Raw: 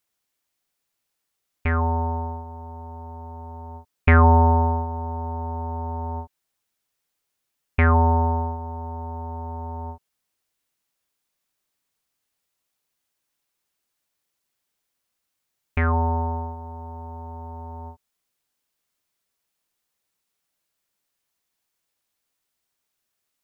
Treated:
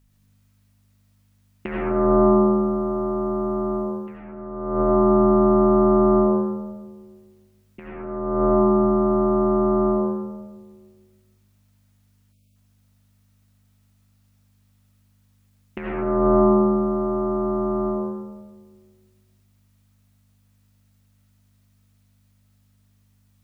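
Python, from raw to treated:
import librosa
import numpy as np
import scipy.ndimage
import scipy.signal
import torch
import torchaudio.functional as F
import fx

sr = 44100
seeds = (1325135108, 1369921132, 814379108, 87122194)

y = x * np.sin(2.0 * np.pi * 290.0 * np.arange(len(x)) / sr)
y = fx.over_compress(y, sr, threshold_db=-28.0, ratio=-0.5)
y = fx.add_hum(y, sr, base_hz=50, snr_db=29)
y = fx.rev_freeverb(y, sr, rt60_s=1.5, hf_ratio=0.3, predelay_ms=45, drr_db=-3.0)
y = fx.spec_erase(y, sr, start_s=12.32, length_s=0.24, low_hz=710.0, high_hz=2100.0)
y = y * 10.0 ** (2.5 / 20.0)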